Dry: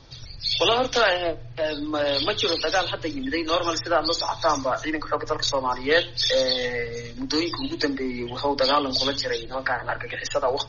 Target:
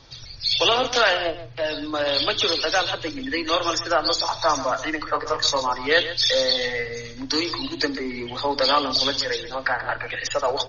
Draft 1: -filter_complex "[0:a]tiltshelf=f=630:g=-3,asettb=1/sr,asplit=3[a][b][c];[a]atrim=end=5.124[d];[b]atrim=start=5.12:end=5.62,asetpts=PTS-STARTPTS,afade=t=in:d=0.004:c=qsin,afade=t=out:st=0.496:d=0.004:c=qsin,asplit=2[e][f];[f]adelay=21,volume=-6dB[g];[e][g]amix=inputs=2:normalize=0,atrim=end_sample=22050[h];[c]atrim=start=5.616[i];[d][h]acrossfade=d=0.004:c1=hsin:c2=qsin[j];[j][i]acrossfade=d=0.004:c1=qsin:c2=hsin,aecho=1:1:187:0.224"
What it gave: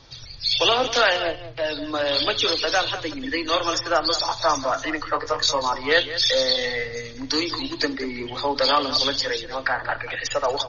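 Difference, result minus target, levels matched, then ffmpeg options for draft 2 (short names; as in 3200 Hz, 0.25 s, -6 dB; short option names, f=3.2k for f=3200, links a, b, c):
echo 51 ms late
-filter_complex "[0:a]tiltshelf=f=630:g=-3,asettb=1/sr,asplit=3[a][b][c];[a]atrim=end=5.124[d];[b]atrim=start=5.12:end=5.62,asetpts=PTS-STARTPTS,afade=t=in:d=0.004:c=qsin,afade=t=out:st=0.496:d=0.004:c=qsin,asplit=2[e][f];[f]adelay=21,volume=-6dB[g];[e][g]amix=inputs=2:normalize=0,atrim=end_sample=22050[h];[c]atrim=start=5.616[i];[d][h]acrossfade=d=0.004:c1=hsin:c2=qsin[j];[j][i]acrossfade=d=0.004:c1=qsin:c2=hsin,aecho=1:1:136:0.224"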